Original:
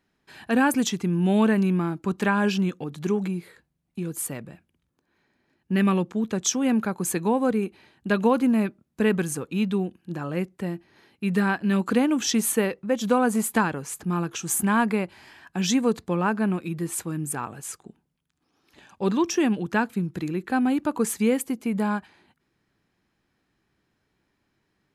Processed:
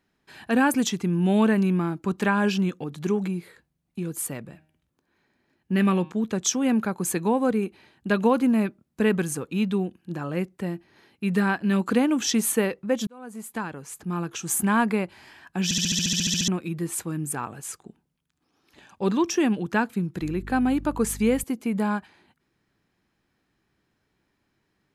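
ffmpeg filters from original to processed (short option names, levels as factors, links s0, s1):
-filter_complex "[0:a]asettb=1/sr,asplit=3[s0][s1][s2];[s0]atrim=end=4.444[s3];[s1]atrim=start=4.44:end=6.12,asetpts=PTS-STARTPTS,afade=t=in:d=0.004:c=qsin,afade=t=out:st=1.676:d=0.004:c=qsin,bandreject=f=155.8:t=h:w=4,bandreject=f=311.6:t=h:w=4,bandreject=f=467.4:t=h:w=4,bandreject=f=623.2:t=h:w=4,bandreject=f=779:t=h:w=4,bandreject=f=934.8:t=h:w=4,bandreject=f=1090.6:t=h:w=4,bandreject=f=1246.4:t=h:w=4,bandreject=f=1402.2:t=h:w=4,bandreject=f=1558:t=h:w=4,bandreject=f=1713.8:t=h:w=4,bandreject=f=1869.6:t=h:w=4,bandreject=f=2025.4:t=h:w=4,bandreject=f=2181.2:t=h:w=4,bandreject=f=2337:t=h:w=4,bandreject=f=2492.8:t=h:w=4,bandreject=f=2648.6:t=h:w=4,bandreject=f=2804.4:t=h:w=4,bandreject=f=2960.2:t=h:w=4,bandreject=f=3116:t=h:w=4,bandreject=f=3271.8:t=h:w=4,bandreject=f=3427.6:t=h:w=4,bandreject=f=3583.4:t=h:w=4,bandreject=f=3739.2:t=h:w=4,bandreject=f=3895:t=h:w=4,bandreject=f=4050.8:t=h:w=4,bandreject=f=4206.6:t=h:w=4,bandreject=f=4362.4:t=h:w=4,bandreject=f=4518.2:t=h:w=4,bandreject=f=4674:t=h:w=4,bandreject=f=4829.8:t=h:w=4,bandreject=f=4985.6:t=h:w=4,bandreject=f=5141.4:t=h:w=4,bandreject=f=5297.2:t=h:w=4,bandreject=f=5453:t=h:w=4,bandreject=f=5608.8:t=h:w=4,bandreject=f=5764.6:t=h:w=4[s4];[s2]atrim=start=6.116[s5];[s3][s4]acrossfade=d=0.004:c1=hsin:c2=qsin[s6];[s6][s5]acrossfade=d=0.004:c1=qsin:c2=hsin,asettb=1/sr,asplit=3[s7][s8][s9];[s7]atrim=end=20.214[s10];[s8]atrim=start=20.21:end=21.44,asetpts=PTS-STARTPTS,afade=t=in:d=0.004:c=qsin,afade=t=out:st=1.226:d=0.004:c=qsin,aeval=exprs='val(0)+0.0141*(sin(2*PI*50*n/s)+sin(2*PI*2*50*n/s)/2+sin(2*PI*3*50*n/s)/3+sin(2*PI*4*50*n/s)/4+sin(2*PI*5*50*n/s)/5)':c=same[s11];[s9]atrim=start=21.436[s12];[s10][s11]acrossfade=d=0.004:c1=hsin:c2=qsin[s13];[s13][s12]acrossfade=d=0.004:c1=qsin:c2=hsin,asplit=14[s14][s15][s16][s17][s18][s19][s20][s21][s22][s23][s24][s25][s26][s27];[s14]atrim=end=13.07,asetpts=PTS-STARTPTS,afade=t=out:st=13.066:d=0.004:c=hsin[s28];[s15]atrim=start=13.07:end=15.712,asetpts=PTS-STARTPTS,afade=t=in:d=1.51[s29];[s16]atrim=start=15.638:end=15.712[s30];[s17]atrim=start=15.638:end=15.712[s31];[s18]atrim=start=15.638:end=15.712[s32];[s19]atrim=start=15.638:end=15.712[s33];[s20]atrim=start=15.638:end=15.712[s34];[s21]atrim=start=15.638:end=15.712[s35];[s22]atrim=start=15.638:end=15.712[s36];[s23]atrim=start=15.638:end=15.712[s37];[s24]atrim=start=15.638:end=15.712[s38];[s25]atrim=start=15.638:end=15.712[s39];[s26]atrim=start=15.638:end=15.712[s40];[s27]atrim=start=16.478[s41];[s28][s29]concat=n=2:v=0:a=1[s42];[s42][s30]acrossfade=d=0.004:c1=hsin:c2=hsin[s43];[s43][s31]acrossfade=d=0.004:c1=hsin:c2=hsin[s44];[s44][s32]acrossfade=d=0.004:c1=hsin:c2=hsin[s45];[s45][s33]acrossfade=d=0.004:c1=hsin:c2=hsin[s46];[s46][s34]acrossfade=d=0.004:c1=hsin:c2=hsin[s47];[s47][s35]acrossfade=d=0.004:c1=hsin:c2=hsin[s48];[s48][s36]acrossfade=d=0.004:c1=hsin:c2=hsin[s49];[s49][s37]acrossfade=d=0.004:c1=hsin:c2=hsin[s50];[s50][s38]acrossfade=d=0.004:c1=hsin:c2=hsin[s51];[s51][s39]acrossfade=d=0.004:c1=hsin:c2=hsin[s52];[s52][s40]acrossfade=d=0.004:c1=hsin:c2=hsin[s53];[s53][s41]acrossfade=d=0.004:c1=hsin:c2=hsin"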